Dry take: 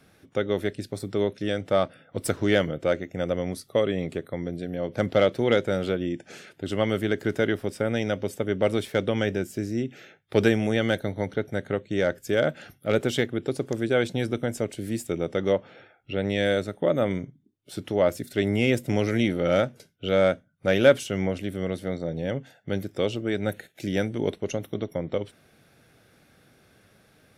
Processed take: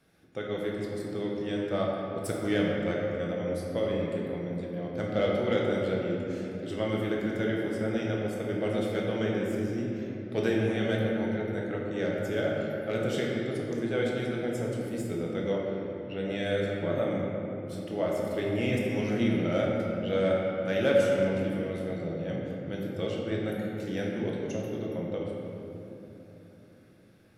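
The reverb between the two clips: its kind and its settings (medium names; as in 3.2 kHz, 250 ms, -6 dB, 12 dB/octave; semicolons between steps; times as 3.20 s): simulated room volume 190 m³, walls hard, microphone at 0.69 m; trim -10 dB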